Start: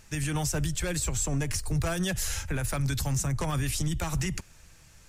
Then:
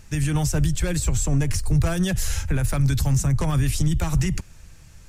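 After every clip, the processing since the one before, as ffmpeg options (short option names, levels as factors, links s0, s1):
-af "lowshelf=f=260:g=8.5,volume=1.26"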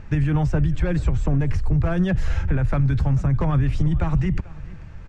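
-af "lowpass=1800,acompressor=threshold=0.0447:ratio=3,aecho=1:1:440:0.0891,volume=2.66"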